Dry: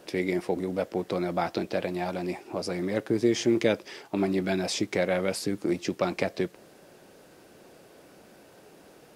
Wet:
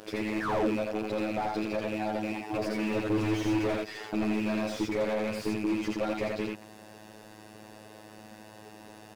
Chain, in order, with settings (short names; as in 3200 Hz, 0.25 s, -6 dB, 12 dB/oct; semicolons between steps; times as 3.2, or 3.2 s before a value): rattling part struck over -33 dBFS, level -18 dBFS; 2.4–4.09 comb 6.7 ms, depth 97%; in parallel at +1 dB: compressor, threshold -33 dBFS, peak gain reduction 17 dB; 0.41–0.69 on the sum: painted sound fall 230–1900 Hz -21 dBFS; robotiser 107 Hz; overloaded stage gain 23 dB; on a send: echo 83 ms -3.5 dB; on the sum: slew limiter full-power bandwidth 36 Hz